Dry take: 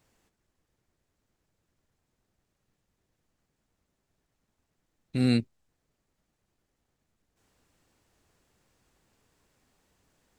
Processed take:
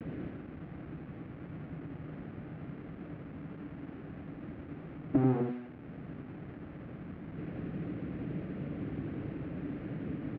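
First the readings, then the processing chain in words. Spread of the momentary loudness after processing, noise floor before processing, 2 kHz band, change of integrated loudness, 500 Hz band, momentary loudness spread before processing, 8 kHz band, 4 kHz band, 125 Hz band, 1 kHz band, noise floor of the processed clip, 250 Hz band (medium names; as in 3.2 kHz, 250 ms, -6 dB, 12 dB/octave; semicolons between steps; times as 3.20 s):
12 LU, -81 dBFS, -2.0 dB, -12.0 dB, +4.0 dB, 7 LU, under -20 dB, under -15 dB, +1.0 dB, +9.0 dB, -48 dBFS, 0.0 dB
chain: square wave that keeps the level; tilt EQ -2.5 dB/octave; hum notches 60/120/180/240/300/360/420 Hz; in parallel at +0.5 dB: peak limiter -16.5 dBFS, peak gain reduction 10 dB; on the sum: compression 12:1, threshold -42 dBFS, peak gain reduction 33.5 dB; loudest bins only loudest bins 16; full-wave rectifier; bit crusher 11-bit; vibrato 0.6 Hz 50 cents; cabinet simulation 110–2400 Hz, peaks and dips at 160 Hz +7 dB, 290 Hz +9 dB, 950 Hz -7 dB; on a send: delay 85 ms -6 dB; on the sum: trim +17 dB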